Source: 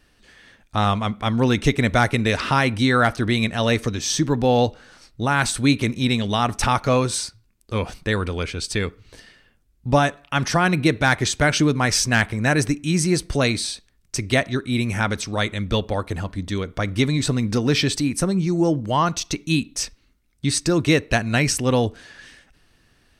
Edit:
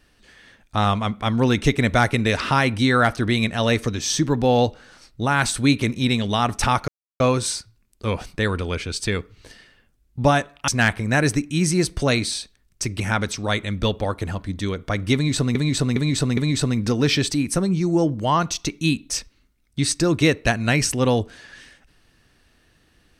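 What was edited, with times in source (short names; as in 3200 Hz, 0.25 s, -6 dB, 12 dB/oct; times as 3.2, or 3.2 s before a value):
6.88 insert silence 0.32 s
10.36–12.01 cut
14.33–14.89 cut
17.03–17.44 loop, 4 plays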